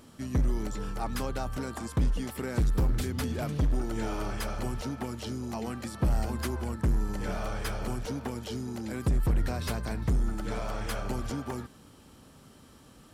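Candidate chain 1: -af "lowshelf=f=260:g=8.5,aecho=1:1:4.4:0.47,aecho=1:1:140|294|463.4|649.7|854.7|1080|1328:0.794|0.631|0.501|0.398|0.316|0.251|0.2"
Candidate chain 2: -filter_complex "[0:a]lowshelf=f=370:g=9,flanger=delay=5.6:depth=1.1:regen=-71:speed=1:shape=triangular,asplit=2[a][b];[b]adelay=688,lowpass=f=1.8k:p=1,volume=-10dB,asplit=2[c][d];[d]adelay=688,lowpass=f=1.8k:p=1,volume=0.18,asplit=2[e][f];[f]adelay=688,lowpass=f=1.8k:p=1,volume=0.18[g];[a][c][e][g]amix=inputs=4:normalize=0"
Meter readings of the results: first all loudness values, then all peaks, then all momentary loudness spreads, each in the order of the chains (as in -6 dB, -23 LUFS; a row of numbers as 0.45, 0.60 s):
-20.5, -29.0 LUFS; -3.0, -13.0 dBFS; 9, 10 LU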